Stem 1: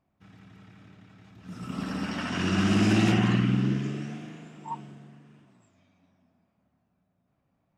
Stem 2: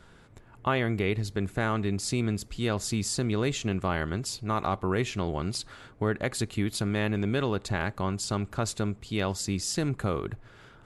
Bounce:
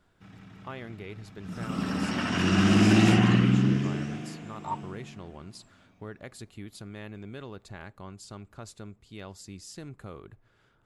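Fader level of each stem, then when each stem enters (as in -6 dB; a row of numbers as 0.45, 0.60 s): +2.5, -14.0 dB; 0.00, 0.00 s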